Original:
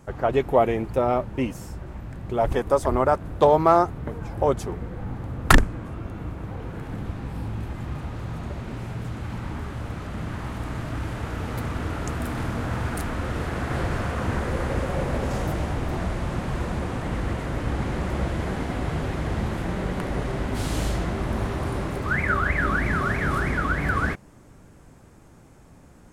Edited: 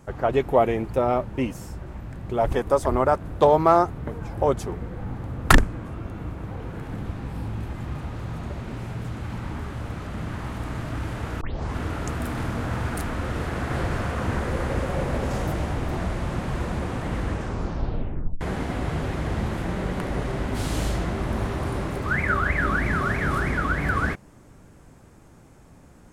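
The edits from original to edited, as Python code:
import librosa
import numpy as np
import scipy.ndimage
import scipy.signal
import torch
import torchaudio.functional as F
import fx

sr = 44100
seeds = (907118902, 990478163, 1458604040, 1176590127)

y = fx.edit(x, sr, fx.tape_start(start_s=11.41, length_s=0.35),
    fx.tape_stop(start_s=17.22, length_s=1.19), tone=tone)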